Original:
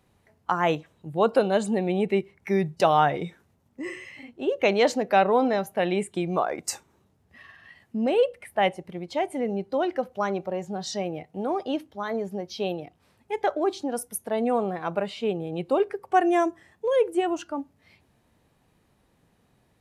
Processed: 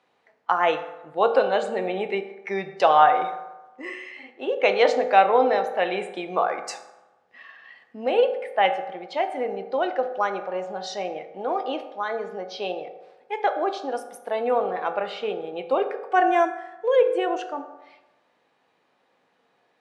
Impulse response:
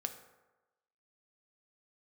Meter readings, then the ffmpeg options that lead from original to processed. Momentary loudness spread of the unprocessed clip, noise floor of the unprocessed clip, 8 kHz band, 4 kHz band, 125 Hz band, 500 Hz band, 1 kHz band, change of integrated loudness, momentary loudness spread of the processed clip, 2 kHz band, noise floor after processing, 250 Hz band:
12 LU, −67 dBFS, −8.0 dB, +1.5 dB, below −10 dB, +2.0 dB, +4.5 dB, +2.0 dB, 15 LU, +3.5 dB, −68 dBFS, −6.0 dB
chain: -filter_complex "[0:a]highpass=490,lowpass=4100[link_01];[1:a]atrim=start_sample=2205[link_02];[link_01][link_02]afir=irnorm=-1:irlink=0,volume=4.5dB"

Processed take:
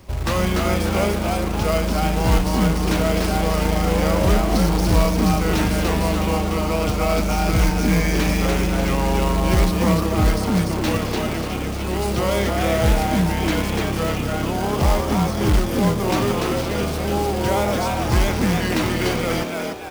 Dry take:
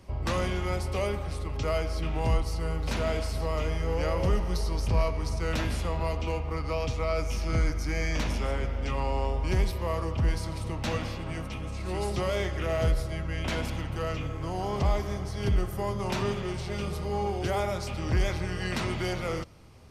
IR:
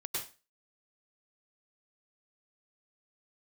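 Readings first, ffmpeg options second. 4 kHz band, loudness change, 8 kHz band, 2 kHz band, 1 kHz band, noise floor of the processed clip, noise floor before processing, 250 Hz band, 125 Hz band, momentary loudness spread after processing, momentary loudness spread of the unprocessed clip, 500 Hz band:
+11.0 dB, +10.0 dB, +13.5 dB, +10.0 dB, +11.5 dB, −25 dBFS, −35 dBFS, +15.0 dB, +8.5 dB, 4 LU, 5 LU, +9.5 dB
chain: -filter_complex "[0:a]acrusher=bits=3:mode=log:mix=0:aa=0.000001,asplit=7[link_01][link_02][link_03][link_04][link_05][link_06][link_07];[link_02]adelay=293,afreqshift=130,volume=-3dB[link_08];[link_03]adelay=586,afreqshift=260,volume=-10.1dB[link_09];[link_04]adelay=879,afreqshift=390,volume=-17.3dB[link_10];[link_05]adelay=1172,afreqshift=520,volume=-24.4dB[link_11];[link_06]adelay=1465,afreqshift=650,volume=-31.5dB[link_12];[link_07]adelay=1758,afreqshift=780,volume=-38.7dB[link_13];[link_01][link_08][link_09][link_10][link_11][link_12][link_13]amix=inputs=7:normalize=0,volume=7dB"

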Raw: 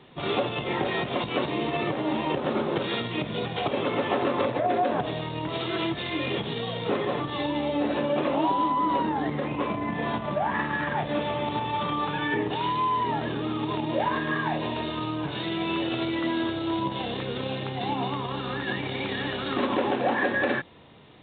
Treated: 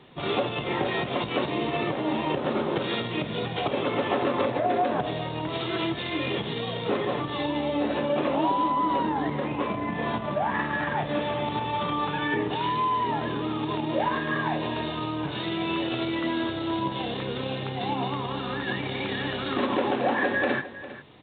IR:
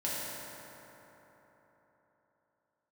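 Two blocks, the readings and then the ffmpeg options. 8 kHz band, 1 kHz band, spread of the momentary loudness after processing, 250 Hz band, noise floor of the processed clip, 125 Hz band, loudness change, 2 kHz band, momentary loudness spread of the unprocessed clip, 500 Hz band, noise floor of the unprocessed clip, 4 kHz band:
can't be measured, 0.0 dB, 6 LU, 0.0 dB, −34 dBFS, 0.0 dB, 0.0 dB, 0.0 dB, 6 LU, 0.0 dB, −34 dBFS, 0.0 dB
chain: -af "aecho=1:1:404:0.178"

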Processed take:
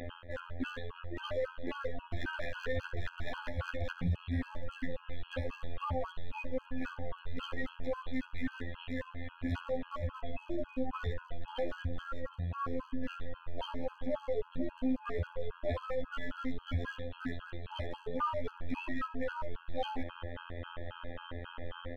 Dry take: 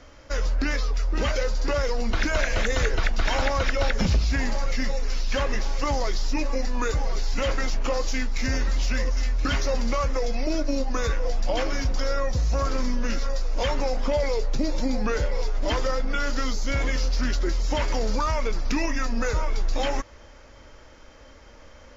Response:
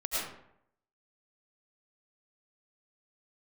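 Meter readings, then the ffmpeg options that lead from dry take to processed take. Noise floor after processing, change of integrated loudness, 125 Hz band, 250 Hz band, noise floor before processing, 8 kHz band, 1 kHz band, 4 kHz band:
−56 dBFS, −13.0 dB, −11.0 dB, −9.0 dB, −48 dBFS, can't be measured, −11.0 dB, −16.0 dB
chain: -af "bandreject=frequency=2200:width=7.9,areverse,acompressor=threshold=-35dB:ratio=12,areverse,afftfilt=real='hypot(re,im)*cos(PI*b)':imag='0':win_size=2048:overlap=0.75,aresample=8000,asoftclip=type=tanh:threshold=-34.5dB,aresample=44100,acontrast=48,volume=31dB,asoftclip=hard,volume=-31dB,aecho=1:1:69|138|207:0.15|0.0509|0.0173,afftfilt=real='re*gt(sin(2*PI*3.7*pts/sr)*(1-2*mod(floor(b*sr/1024/830),2)),0)':imag='im*gt(sin(2*PI*3.7*pts/sr)*(1-2*mod(floor(b*sr/1024/830),2)),0)':win_size=1024:overlap=0.75,volume=7dB"

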